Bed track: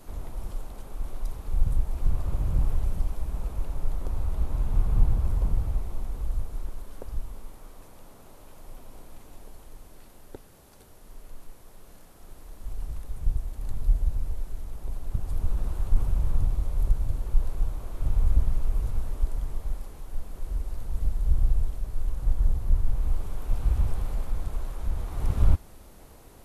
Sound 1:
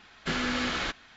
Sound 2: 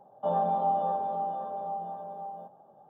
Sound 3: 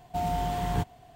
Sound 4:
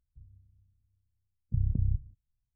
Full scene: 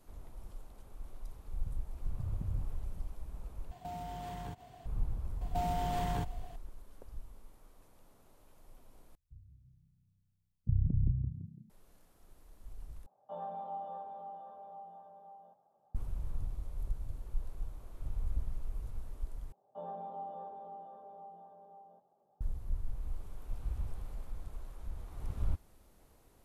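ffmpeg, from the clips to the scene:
-filter_complex "[4:a]asplit=2[s0][s1];[3:a]asplit=2[s2][s3];[2:a]asplit=2[s4][s5];[0:a]volume=0.211[s6];[s2]acompressor=threshold=0.0126:ratio=6:attack=3.2:release=140:knee=1:detection=peak[s7];[s3]acompressor=threshold=0.0316:ratio=6:attack=3.2:release=140:knee=1:detection=peak[s8];[s1]asplit=5[s9][s10][s11][s12][s13];[s10]adelay=168,afreqshift=31,volume=0.447[s14];[s11]adelay=336,afreqshift=62,volume=0.16[s15];[s12]adelay=504,afreqshift=93,volume=0.0582[s16];[s13]adelay=672,afreqshift=124,volume=0.0209[s17];[s9][s14][s15][s16][s17]amix=inputs=5:normalize=0[s18];[s4]equalizer=f=250:w=0.53:g=-6[s19];[s5]equalizer=f=400:w=5.2:g=6.5[s20];[s6]asplit=5[s21][s22][s23][s24][s25];[s21]atrim=end=3.714[s26];[s7]atrim=end=1.15,asetpts=PTS-STARTPTS,volume=0.841[s27];[s22]atrim=start=4.856:end=9.154[s28];[s18]atrim=end=2.55,asetpts=PTS-STARTPTS,volume=0.841[s29];[s23]atrim=start=11.696:end=13.064[s30];[s19]atrim=end=2.89,asetpts=PTS-STARTPTS,volume=0.237[s31];[s24]atrim=start=15.946:end=19.524[s32];[s20]atrim=end=2.89,asetpts=PTS-STARTPTS,volume=0.15[s33];[s25]atrim=start=22.406[s34];[s0]atrim=end=2.55,asetpts=PTS-STARTPTS,volume=0.282,afade=t=in:d=0.004:c=hsin,afade=t=out:st=2.546:d=0.004:c=hsin,adelay=660[s35];[s8]atrim=end=1.15,asetpts=PTS-STARTPTS,afade=t=in:d=0.004:c=hsin,afade=t=out:st=1.146:d=0.004:c=hsin,adelay=238581S[s36];[s26][s27]acrossfade=d=0.004:c1=hsin:c2=hsin[s37];[s37][s28]acrossfade=d=0.004:c1=hsin:c2=hsin[s38];[s38][s29]acrossfade=d=0.004:c1=hsin:c2=hsin[s39];[s39][s30]acrossfade=d=0.004:c1=hsin:c2=hsin[s40];[s40][s31]acrossfade=d=0.004:c1=hsin:c2=hsin[s41];[s41][s32]acrossfade=d=0.004:c1=hsin:c2=hsin[s42];[s42][s33]acrossfade=d=0.004:c1=hsin:c2=hsin[s43];[s43][s34]acrossfade=d=0.004:c1=hsin:c2=hsin[s44];[s44][s35][s36]amix=inputs=3:normalize=0"

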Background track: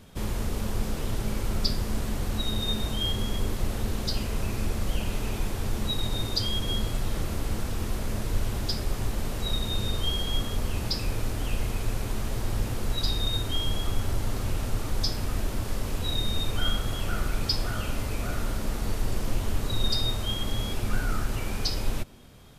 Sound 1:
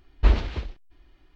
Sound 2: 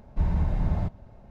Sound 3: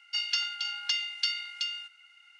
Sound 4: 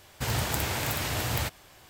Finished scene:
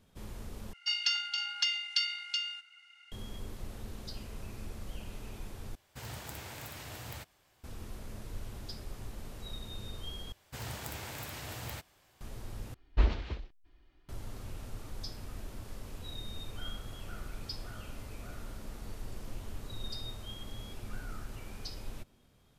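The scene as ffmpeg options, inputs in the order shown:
-filter_complex "[4:a]asplit=2[s0][s1];[0:a]volume=0.188,asplit=5[s2][s3][s4][s5][s6];[s2]atrim=end=0.734[s7];[3:a]atrim=end=2.39,asetpts=PTS-STARTPTS,volume=0.891[s8];[s3]atrim=start=3.116:end=5.754[s9];[s0]atrim=end=1.89,asetpts=PTS-STARTPTS,volume=0.178[s10];[s4]atrim=start=7.636:end=10.324[s11];[s1]atrim=end=1.89,asetpts=PTS-STARTPTS,volume=0.237[s12];[s5]atrim=start=12.206:end=12.744[s13];[1:a]atrim=end=1.35,asetpts=PTS-STARTPTS,volume=0.422[s14];[s6]atrim=start=14.086[s15];[s7][s8]acrossfade=d=0.004:c1=hsin:c2=hsin[s16];[s16][s9]acrossfade=d=0.004:c1=hsin:c2=hsin[s17];[s17][s10]acrossfade=d=0.004:c1=hsin:c2=hsin[s18];[s18][s11]acrossfade=d=0.004:c1=hsin:c2=hsin[s19];[s19][s12]acrossfade=d=0.004:c1=hsin:c2=hsin[s20];[s20][s13]acrossfade=d=0.004:c1=hsin:c2=hsin[s21];[s21][s14]acrossfade=d=0.004:c1=hsin:c2=hsin[s22];[s22][s15]acrossfade=d=0.004:c1=hsin:c2=hsin"

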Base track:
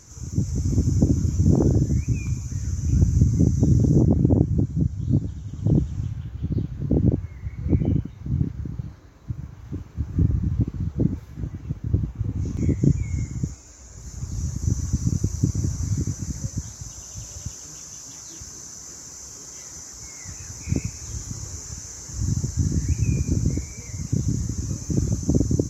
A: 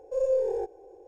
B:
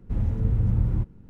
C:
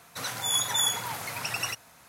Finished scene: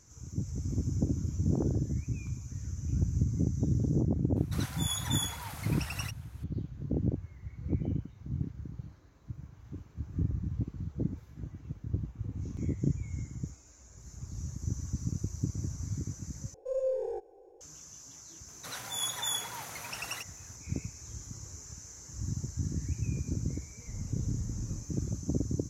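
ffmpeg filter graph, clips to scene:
-filter_complex "[3:a]asplit=2[s0][s1];[0:a]volume=0.282[s2];[s0]highpass=440[s3];[s2]asplit=2[s4][s5];[s4]atrim=end=16.544[s6];[1:a]atrim=end=1.07,asetpts=PTS-STARTPTS,volume=0.501[s7];[s5]atrim=start=17.606[s8];[s3]atrim=end=2.08,asetpts=PTS-STARTPTS,volume=0.376,afade=t=in:d=0.004:c=hsin,afade=t=out:st=2.076:d=0.004:c=hsin,adelay=4360[s9];[s1]atrim=end=2.08,asetpts=PTS-STARTPTS,volume=0.422,afade=t=in:d=0.004:c=hsin,afade=t=out:st=2.076:d=0.004:c=hsin,adelay=18480[s10];[2:a]atrim=end=1.29,asetpts=PTS-STARTPTS,volume=0.141,afade=t=in:d=0.004:c=hsin,afade=t=out:st=1.286:d=0.004:c=hsin,adelay=23780[s11];[s6][s7]acrossfade=d=0.004:c1=hsin:c2=hsin[s12];[s12][s8]acrossfade=d=0.004:c1=hsin:c2=hsin[s13];[s13][s9][s10][s11]amix=inputs=4:normalize=0"

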